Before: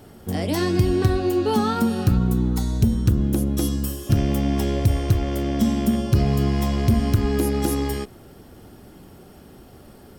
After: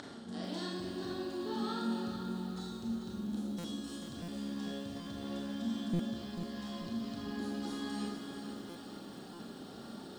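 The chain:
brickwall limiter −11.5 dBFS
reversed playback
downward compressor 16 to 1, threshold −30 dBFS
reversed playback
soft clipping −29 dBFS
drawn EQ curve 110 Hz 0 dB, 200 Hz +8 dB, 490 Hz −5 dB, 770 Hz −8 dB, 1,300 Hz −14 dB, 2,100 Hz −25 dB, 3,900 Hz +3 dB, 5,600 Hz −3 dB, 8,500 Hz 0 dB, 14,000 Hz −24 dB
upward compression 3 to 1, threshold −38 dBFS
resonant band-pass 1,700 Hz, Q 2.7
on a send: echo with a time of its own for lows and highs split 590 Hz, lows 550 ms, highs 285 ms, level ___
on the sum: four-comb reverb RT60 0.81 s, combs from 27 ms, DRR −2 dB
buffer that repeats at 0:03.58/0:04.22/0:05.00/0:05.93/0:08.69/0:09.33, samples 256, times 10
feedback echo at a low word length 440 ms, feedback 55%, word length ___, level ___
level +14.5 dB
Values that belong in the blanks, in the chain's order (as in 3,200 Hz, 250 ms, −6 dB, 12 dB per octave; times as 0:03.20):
−15 dB, 12 bits, −8 dB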